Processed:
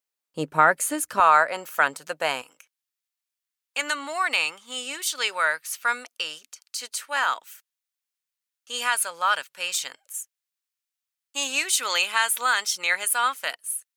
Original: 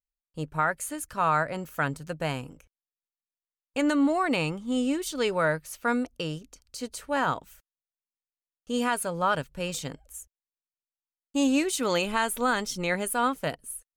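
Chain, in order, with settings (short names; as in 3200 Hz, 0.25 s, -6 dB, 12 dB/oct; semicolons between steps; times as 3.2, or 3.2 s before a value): HPF 260 Hz 12 dB/oct, from 1.2 s 670 Hz, from 2.42 s 1400 Hz; gain +8.5 dB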